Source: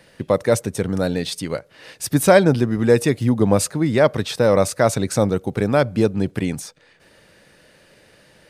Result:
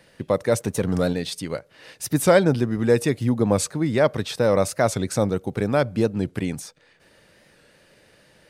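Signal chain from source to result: 0.6–1.13 sample leveller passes 1; record warp 45 rpm, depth 100 cents; gain -3.5 dB

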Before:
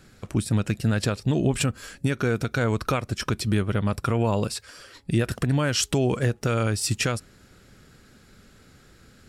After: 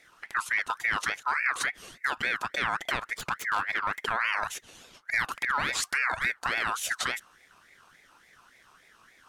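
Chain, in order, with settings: 3.13–4.06 self-modulated delay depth 0.095 ms; ring modulator with a swept carrier 1600 Hz, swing 30%, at 3.5 Hz; gain -3 dB

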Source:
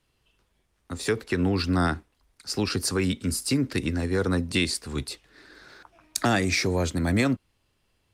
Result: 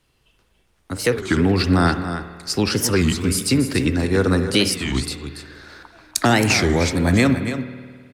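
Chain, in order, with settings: 3.18–3.86 sample gate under -51 dBFS; echo 0.284 s -10 dB; spring tank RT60 1.8 s, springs 52 ms, chirp 50 ms, DRR 10 dB; record warp 33 1/3 rpm, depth 250 cents; gain +6.5 dB

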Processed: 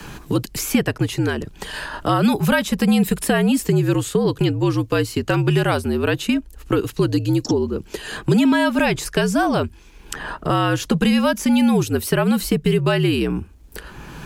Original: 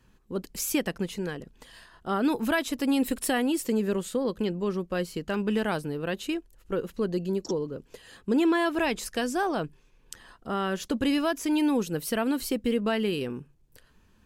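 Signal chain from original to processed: frequency shift -63 Hz; three-band squash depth 70%; gain +9 dB

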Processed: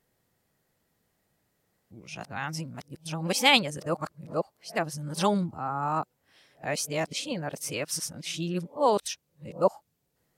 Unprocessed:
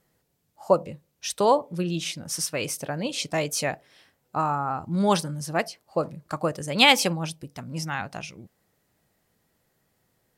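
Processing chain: whole clip reversed; gain -3.5 dB

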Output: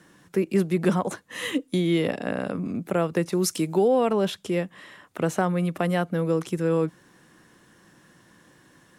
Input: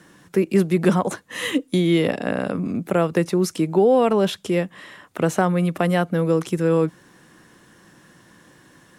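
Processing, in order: 3.32–3.88 high shelf 3300 Hz +10 dB; gain -4.5 dB

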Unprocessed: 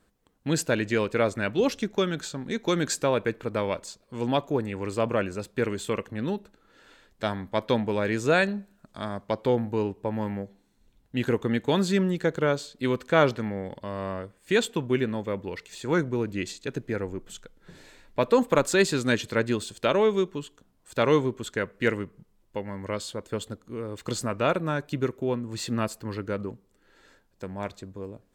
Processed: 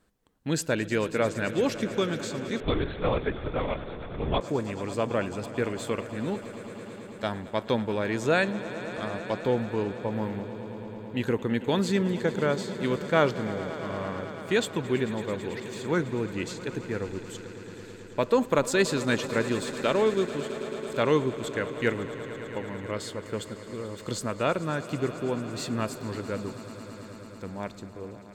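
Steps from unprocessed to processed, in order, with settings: swelling echo 0.11 s, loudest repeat 5, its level -17.5 dB; 2.6–4.41 LPC vocoder at 8 kHz whisper; gain -2 dB

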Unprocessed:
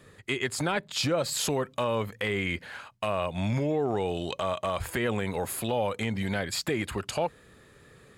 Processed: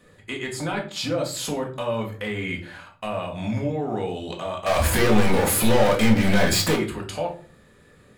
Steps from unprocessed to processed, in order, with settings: 4.66–6.76 sample leveller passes 5; shoebox room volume 320 m³, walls furnished, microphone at 1.9 m; gain -3 dB

